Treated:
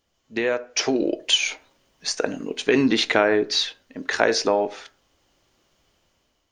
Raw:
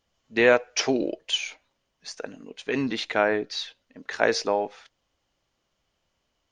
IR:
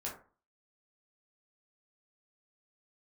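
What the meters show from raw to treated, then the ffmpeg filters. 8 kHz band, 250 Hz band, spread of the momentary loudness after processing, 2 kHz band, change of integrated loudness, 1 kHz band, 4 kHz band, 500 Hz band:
+6.5 dB, +5.5 dB, 11 LU, +2.0 dB, +2.5 dB, +2.0 dB, +7.0 dB, +2.5 dB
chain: -filter_complex "[0:a]equalizer=frequency=340:width_type=o:width=0.68:gain=4,acompressor=threshold=-27dB:ratio=2.5,asplit=2[link_01][link_02];[1:a]atrim=start_sample=2205[link_03];[link_02][link_03]afir=irnorm=-1:irlink=0,volume=-11.5dB[link_04];[link_01][link_04]amix=inputs=2:normalize=0,dynaudnorm=framelen=420:gausssize=5:maxgain=10.5dB,highshelf=frequency=7100:gain=5.5"

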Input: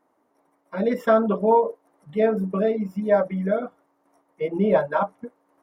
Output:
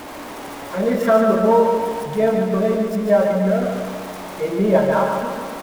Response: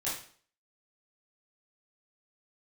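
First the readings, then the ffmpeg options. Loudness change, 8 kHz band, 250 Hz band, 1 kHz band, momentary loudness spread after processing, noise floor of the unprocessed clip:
+4.5 dB, can't be measured, +5.5 dB, +4.5 dB, 15 LU, −69 dBFS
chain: -filter_complex "[0:a]aeval=exprs='val(0)+0.5*0.0316*sgn(val(0))':channel_layout=same,aecho=1:1:144|288|432|576|720|864|1008|1152:0.562|0.332|0.196|0.115|0.0681|0.0402|0.0237|0.014,asplit=2[link_01][link_02];[1:a]atrim=start_sample=2205,asetrate=43659,aresample=44100,lowpass=3100[link_03];[link_02][link_03]afir=irnorm=-1:irlink=0,volume=-11.5dB[link_04];[link_01][link_04]amix=inputs=2:normalize=0"

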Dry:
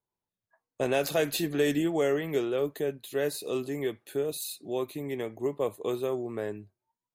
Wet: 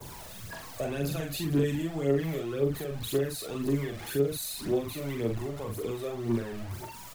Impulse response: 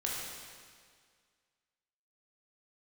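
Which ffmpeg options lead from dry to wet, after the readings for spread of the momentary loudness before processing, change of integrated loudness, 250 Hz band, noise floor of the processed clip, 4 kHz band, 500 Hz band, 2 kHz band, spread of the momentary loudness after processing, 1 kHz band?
8 LU, −1.0 dB, +1.0 dB, −44 dBFS, −1.5 dB, −2.5 dB, −4.0 dB, 11 LU, −3.5 dB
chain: -filter_complex "[0:a]aeval=exprs='val(0)+0.5*0.0188*sgn(val(0))':channel_layout=same,agate=range=-33dB:threshold=-39dB:ratio=3:detection=peak,acrossover=split=280[link_01][link_02];[link_02]acompressor=threshold=-40dB:ratio=3[link_03];[link_01][link_03]amix=inputs=2:normalize=0,aphaser=in_gain=1:out_gain=1:delay=1.8:decay=0.64:speed=1.9:type=triangular,asplit=2[link_04][link_05];[link_05]adelay=43,volume=-4dB[link_06];[link_04][link_06]amix=inputs=2:normalize=0"

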